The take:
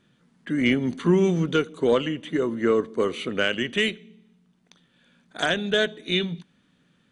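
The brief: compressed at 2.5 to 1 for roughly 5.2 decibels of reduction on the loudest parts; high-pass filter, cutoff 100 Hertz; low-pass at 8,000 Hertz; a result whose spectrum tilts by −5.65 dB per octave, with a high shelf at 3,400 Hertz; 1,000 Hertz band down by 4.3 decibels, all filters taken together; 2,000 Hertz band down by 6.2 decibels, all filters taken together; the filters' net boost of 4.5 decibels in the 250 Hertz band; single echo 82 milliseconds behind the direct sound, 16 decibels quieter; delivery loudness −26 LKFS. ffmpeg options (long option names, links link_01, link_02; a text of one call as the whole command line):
ffmpeg -i in.wav -af "highpass=100,lowpass=8000,equalizer=frequency=250:width_type=o:gain=6.5,equalizer=frequency=1000:width_type=o:gain=-4,equalizer=frequency=2000:width_type=o:gain=-4.5,highshelf=frequency=3400:gain=-7.5,acompressor=threshold=-20dB:ratio=2.5,aecho=1:1:82:0.158,volume=-0.5dB" out.wav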